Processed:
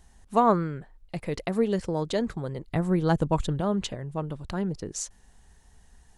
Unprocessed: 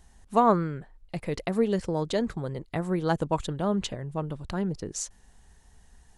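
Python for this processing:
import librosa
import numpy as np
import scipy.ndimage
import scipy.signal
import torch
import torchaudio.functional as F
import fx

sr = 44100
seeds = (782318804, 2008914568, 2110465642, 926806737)

y = fx.low_shelf(x, sr, hz=190.0, db=9.0, at=(2.66, 3.61))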